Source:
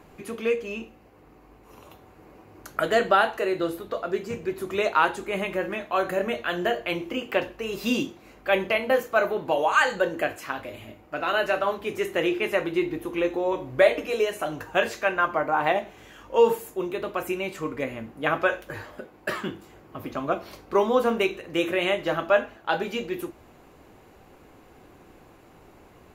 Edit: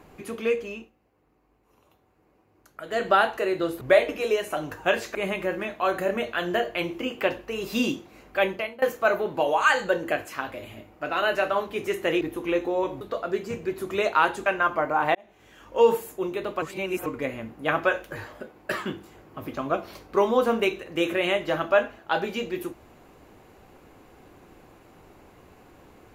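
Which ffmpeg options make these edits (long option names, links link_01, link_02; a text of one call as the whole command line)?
ffmpeg -i in.wav -filter_complex "[0:a]asplit=12[link_01][link_02][link_03][link_04][link_05][link_06][link_07][link_08][link_09][link_10][link_11][link_12];[link_01]atrim=end=0.91,asetpts=PTS-STARTPTS,afade=type=out:start_time=0.62:duration=0.29:silence=0.199526[link_13];[link_02]atrim=start=0.91:end=2.85,asetpts=PTS-STARTPTS,volume=-14dB[link_14];[link_03]atrim=start=2.85:end=3.812,asetpts=PTS-STARTPTS,afade=type=in:duration=0.29:silence=0.199526[link_15];[link_04]atrim=start=13.698:end=15.042[link_16];[link_05]atrim=start=5.258:end=8.93,asetpts=PTS-STARTPTS,afade=type=out:start_time=3.232:duration=0.44:silence=0.0794328[link_17];[link_06]atrim=start=8.93:end=12.322,asetpts=PTS-STARTPTS,afade=type=in:duration=0.004:curve=hsin:silence=0.0794328[link_18];[link_07]atrim=start=12.898:end=13.702[link_19];[link_08]atrim=start=3.808:end=5.262[link_20];[link_09]atrim=start=15.038:end=15.73,asetpts=PTS-STARTPTS,afade=type=out:start_time=0.688:duration=0.004:curve=hsin[link_21];[link_10]atrim=start=15.73:end=17.202,asetpts=PTS-STARTPTS,afade=type=in:duration=0.64[link_22];[link_11]atrim=start=17.198:end=17.642,asetpts=PTS-STARTPTS,areverse[link_23];[link_12]atrim=start=17.638[link_24];[link_13][link_14][link_15]concat=n=3:v=0:a=1[link_25];[link_25][link_16]acrossfade=duration=0.004:curve1=hsin:curve2=hsin[link_26];[link_17][link_18]concat=n=2:v=0:a=1[link_27];[link_26][link_27]acrossfade=duration=0.004:curve1=hsin:curve2=hsin[link_28];[link_28][link_19]acrossfade=duration=0.004:curve1=hsin:curve2=hsin[link_29];[link_29][link_20]acrossfade=duration=0.004:curve1=hsin:curve2=hsin[link_30];[link_21][link_22]concat=n=2:v=0:a=1[link_31];[link_30][link_31]acrossfade=duration=0.004:curve1=hsin:curve2=hsin[link_32];[link_32][link_23]acrossfade=duration=0.004:curve1=hsin:curve2=hsin[link_33];[link_33][link_24]acrossfade=duration=0.004:curve1=hsin:curve2=hsin" out.wav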